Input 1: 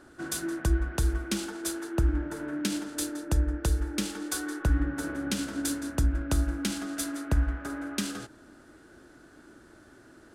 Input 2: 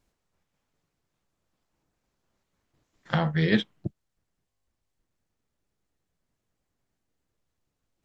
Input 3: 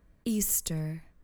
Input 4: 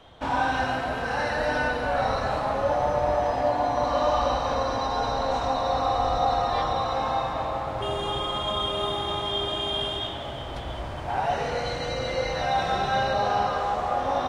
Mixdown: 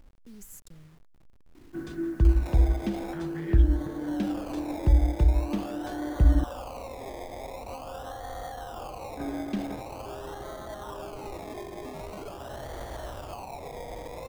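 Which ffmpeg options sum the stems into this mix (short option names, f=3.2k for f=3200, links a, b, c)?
-filter_complex "[0:a]lowpass=2.7k,lowshelf=f=470:t=q:w=1.5:g=6.5,bandreject=f=1.4k:w=12,adelay=1550,volume=-6.5dB,asplit=3[a][b][c];[a]atrim=end=6.44,asetpts=PTS-STARTPTS,afade=t=out:st=6.436:d=0.004:c=hsin[d];[b]atrim=start=6.44:end=9.17,asetpts=PTS-STARTPTS,volume=0[e];[c]atrim=start=9.17,asetpts=PTS-STARTPTS,afade=t=in:d=0.004:c=hsin[f];[d][e][f]concat=n=3:v=0:a=1[g];[1:a]equalizer=f=630:t=o:w=0.67:g=-4,equalizer=f=1.6k:t=o:w=0.67:g=4,equalizer=f=4k:t=o:w=0.67:g=-11,alimiter=limit=-15dB:level=0:latency=1,flanger=delay=3.8:depth=9.7:regen=-74:speed=1.5:shape=sinusoidal,volume=-7.5dB,asplit=2[h][i];[2:a]volume=-20dB[j];[3:a]acrusher=samples=24:mix=1:aa=0.000001:lfo=1:lforange=14.4:lforate=0.45,acrossover=split=350|830[k][l][m];[k]acompressor=threshold=-46dB:ratio=4[n];[l]acompressor=threshold=-35dB:ratio=4[o];[m]acompressor=threshold=-45dB:ratio=4[p];[n][o][p]amix=inputs=3:normalize=0,adelay=2250,volume=-0.5dB[q];[i]apad=whole_len=729163[r];[q][r]sidechaincompress=threshold=-44dB:ratio=8:attack=16:release=1390[s];[h][s]amix=inputs=2:normalize=0,acompressor=mode=upward:threshold=-38dB:ratio=2.5,alimiter=level_in=5.5dB:limit=-24dB:level=0:latency=1:release=384,volume=-5.5dB,volume=0dB[t];[g][j][t]amix=inputs=3:normalize=0,anlmdn=0.00158,lowshelf=f=62:g=11,acrusher=bits=9:mix=0:aa=0.000001"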